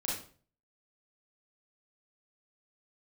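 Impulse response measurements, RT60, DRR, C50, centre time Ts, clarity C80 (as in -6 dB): 0.45 s, -5.5 dB, 2.0 dB, 46 ms, 8.0 dB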